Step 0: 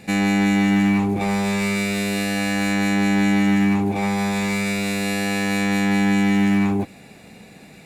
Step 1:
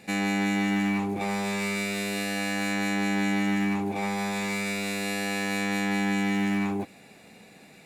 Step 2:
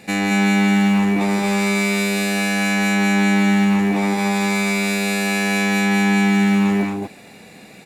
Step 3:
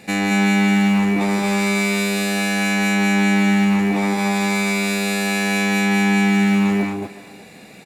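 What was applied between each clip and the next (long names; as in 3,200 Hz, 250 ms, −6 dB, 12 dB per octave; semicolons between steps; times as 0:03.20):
low-shelf EQ 150 Hz −11 dB; level −5 dB
single-tap delay 225 ms −3 dB; level +7 dB
far-end echo of a speakerphone 370 ms, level −17 dB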